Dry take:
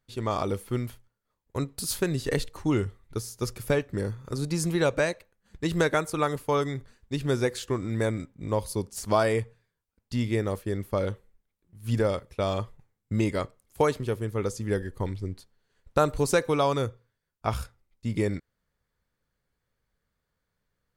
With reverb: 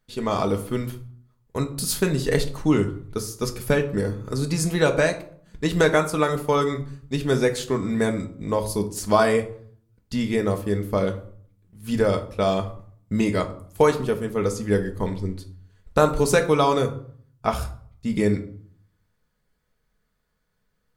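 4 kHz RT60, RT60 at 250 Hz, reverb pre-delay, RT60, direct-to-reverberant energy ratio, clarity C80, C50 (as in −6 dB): 0.35 s, 0.75 s, 4 ms, 0.55 s, 4.5 dB, 16.5 dB, 13.0 dB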